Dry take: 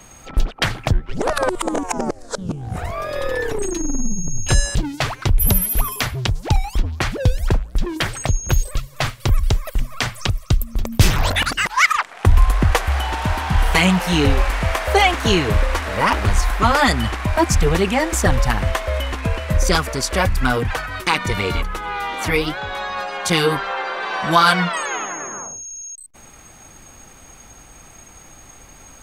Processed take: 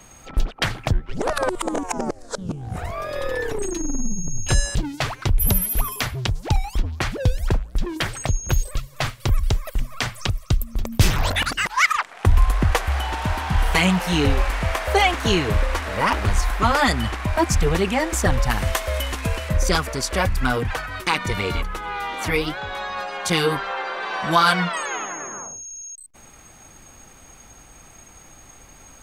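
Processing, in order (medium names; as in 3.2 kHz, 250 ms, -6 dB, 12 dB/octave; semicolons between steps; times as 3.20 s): 18.51–19.49 s: treble shelf 5 kHz +12 dB; trim -3 dB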